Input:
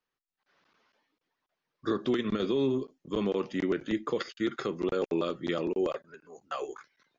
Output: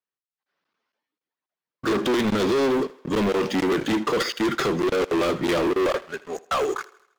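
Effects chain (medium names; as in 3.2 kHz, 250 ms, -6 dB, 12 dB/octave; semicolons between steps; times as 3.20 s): high-pass 110 Hz 6 dB/octave; waveshaping leveller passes 5; on a send: thinning echo 80 ms, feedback 53%, high-pass 320 Hz, level -19.5 dB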